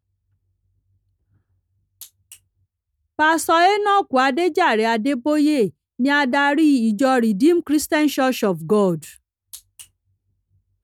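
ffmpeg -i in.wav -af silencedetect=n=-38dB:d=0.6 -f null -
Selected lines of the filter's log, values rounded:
silence_start: 0.00
silence_end: 2.01 | silence_duration: 2.01
silence_start: 2.35
silence_end: 3.19 | silence_duration: 0.84
silence_start: 9.84
silence_end: 10.83 | silence_duration: 0.99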